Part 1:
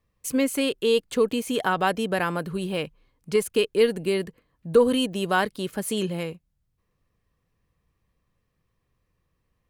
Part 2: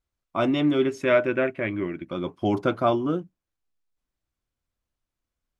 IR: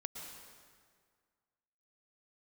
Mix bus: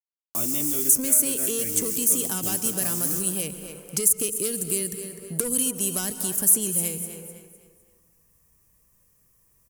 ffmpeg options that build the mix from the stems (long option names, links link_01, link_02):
-filter_complex "[0:a]asoftclip=type=tanh:threshold=-16dB,adelay=650,volume=1.5dB,asplit=3[link_01][link_02][link_03];[link_02]volume=-7.5dB[link_04];[link_03]volume=-14dB[link_05];[1:a]alimiter=limit=-19dB:level=0:latency=1:release=321,acrusher=bits=6:mix=0:aa=0.000001,volume=-2.5dB,asplit=2[link_06][link_07];[link_07]volume=-4dB[link_08];[2:a]atrim=start_sample=2205[link_09];[link_04][link_08]amix=inputs=2:normalize=0[link_10];[link_10][link_09]afir=irnorm=-1:irlink=0[link_11];[link_05]aecho=0:1:253|506|759|1012|1265:1|0.33|0.109|0.0359|0.0119[link_12];[link_01][link_06][link_11][link_12]amix=inputs=4:normalize=0,acrossover=split=330|2900[link_13][link_14][link_15];[link_13]acompressor=threshold=-33dB:ratio=4[link_16];[link_14]acompressor=threshold=-41dB:ratio=4[link_17];[link_15]acompressor=threshold=-38dB:ratio=4[link_18];[link_16][link_17][link_18]amix=inputs=3:normalize=0,aexciter=amount=9.9:drive=5.6:freq=5800"